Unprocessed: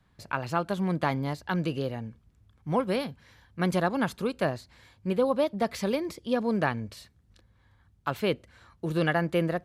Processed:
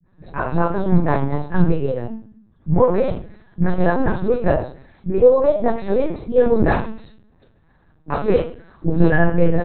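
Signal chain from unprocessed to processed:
0:06.60–0:08.85: one scale factor per block 3 bits
high-pass filter 140 Hz 6 dB per octave
three-band delay without the direct sound lows, mids, highs 40/70 ms, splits 290/2,600 Hz
convolution reverb RT60 0.45 s, pre-delay 3 ms, DRR 0 dB
linear-prediction vocoder at 8 kHz pitch kept
level −1.5 dB

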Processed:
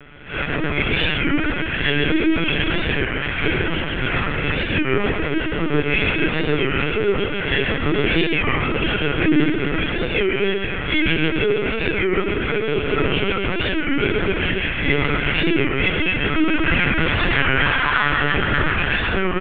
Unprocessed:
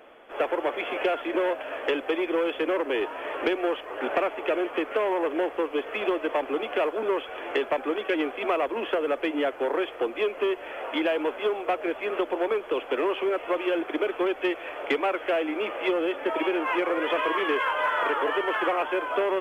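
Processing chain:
peak hold with a rise ahead of every peak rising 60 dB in 0.39 s
0:02.61–0:03.46: low-shelf EQ 500 Hz −8 dB
comb filter 6.9 ms, depth 84%
hum removal 143 Hz, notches 9
in parallel at +1.5 dB: brickwall limiter −17.5 dBFS, peak gain reduction 8.5 dB
on the sum: two-band tremolo in antiphase 1.4 Hz, depth 50%, crossover 1,600 Hz
soft clipping −13 dBFS, distortion −18 dB
Butterworth band-reject 700 Hz, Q 0.69
on a send: reverse bouncing-ball delay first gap 130 ms, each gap 1.15×, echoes 5
on the sum: linear-prediction vocoder at 8 kHz pitch kept
wow of a warped record 33 1/3 rpm, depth 160 cents
level +6 dB

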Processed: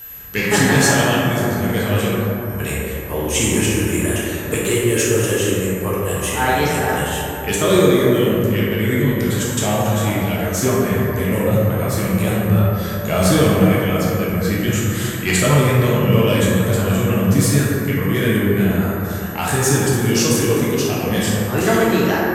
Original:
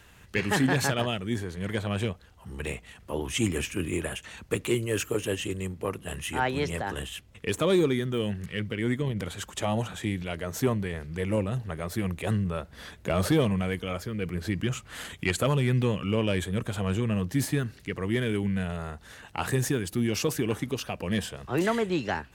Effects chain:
parametric band 7,300 Hz +8.5 dB 1.3 octaves
steady tone 12,000 Hz −40 dBFS
dense smooth reverb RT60 3.2 s, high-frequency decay 0.3×, DRR −7 dB
level +3.5 dB

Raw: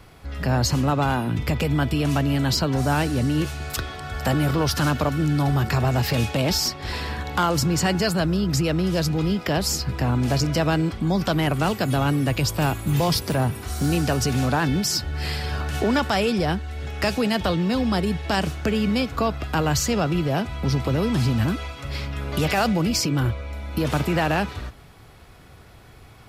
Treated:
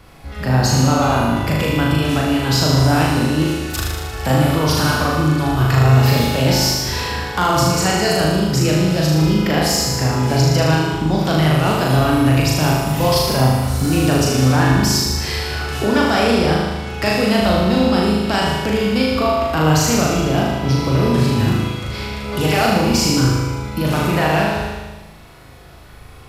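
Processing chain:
flutter between parallel walls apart 6.6 metres, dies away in 1.2 s
on a send at −7 dB: convolution reverb RT60 0.90 s, pre-delay 46 ms
on the sum: level +1.5 dB

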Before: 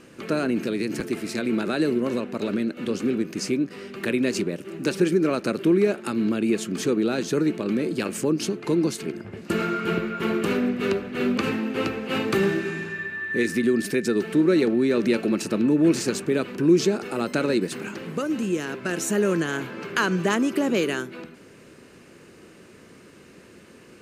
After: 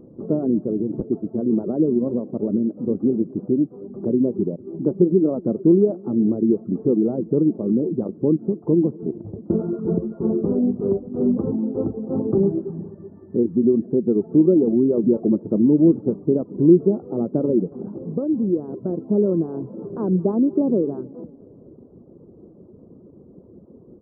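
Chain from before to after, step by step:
reverb reduction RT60 0.62 s
Gaussian smoothing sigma 14 samples
repeating echo 226 ms, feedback 59%, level −23.5 dB
level +7 dB

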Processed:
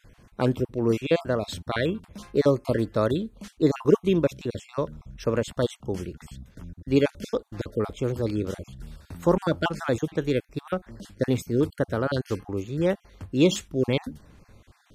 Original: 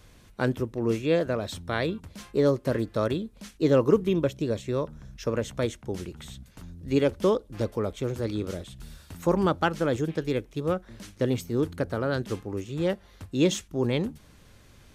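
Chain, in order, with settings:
time-frequency cells dropped at random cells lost 26%
one half of a high-frequency compander decoder only
level +3 dB

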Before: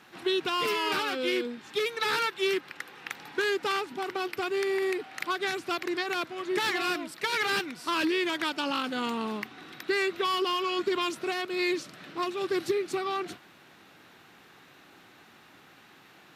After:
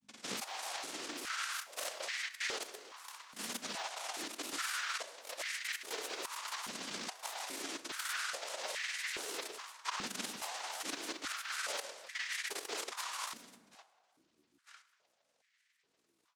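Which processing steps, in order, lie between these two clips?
reversed piece by piece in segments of 52 ms
low-pass filter 3,300 Hz
noise gate with hold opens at −44 dBFS
spectral tilt −4 dB per octave
reversed playback
downward compressor 6 to 1, threshold −35 dBFS, peak gain reduction 16.5 dB
reversed playback
cochlear-implant simulation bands 1
mains hum 50 Hz, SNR 27 dB
granular cloud, grains 20 per second, spray 37 ms, pitch spread up and down by 7 semitones
on a send: feedback echo with a low-pass in the loop 191 ms, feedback 74%, low-pass 920 Hz, level −21 dB
on the sum: dense smooth reverb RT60 1.8 s, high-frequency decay 0.55×, DRR 12 dB
high-pass on a step sequencer 2.4 Hz 220–1,900 Hz
level −5 dB

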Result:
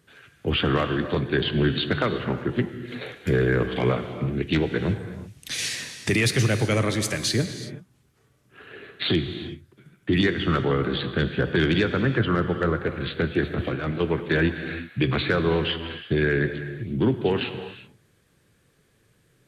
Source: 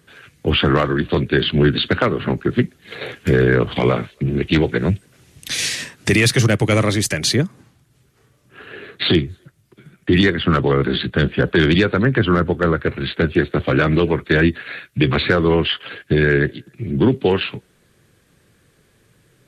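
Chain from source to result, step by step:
0:13.43–0:14.00: compressor whose output falls as the input rises −19 dBFS, ratio −0.5
reverb whose tail is shaped and stops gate 400 ms flat, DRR 8.5 dB
level −7 dB

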